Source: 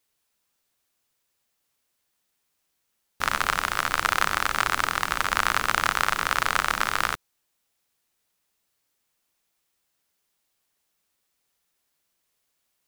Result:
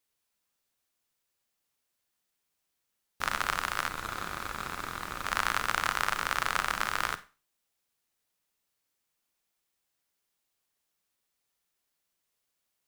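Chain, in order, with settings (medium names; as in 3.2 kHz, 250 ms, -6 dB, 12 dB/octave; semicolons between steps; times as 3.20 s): Schroeder reverb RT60 0.32 s, combs from 31 ms, DRR 12.5 dB; 3.88–5.26 s: valve stage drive 20 dB, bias 0.45; trim -6 dB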